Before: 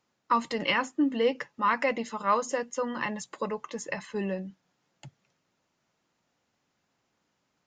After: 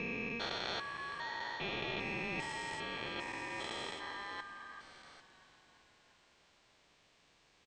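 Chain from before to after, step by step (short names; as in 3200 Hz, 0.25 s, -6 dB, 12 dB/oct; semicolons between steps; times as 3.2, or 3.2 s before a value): stepped spectrum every 0.4 s; reverse; compressor 6:1, threshold -47 dBFS, peak gain reduction 16.5 dB; reverse; BPF 170–3700 Hz; tilt +3 dB/oct; ring modulator 1400 Hz; on a send: frequency-shifting echo 0.342 s, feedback 64%, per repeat -32 Hz, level -16 dB; on the sum: gain +12.5 dB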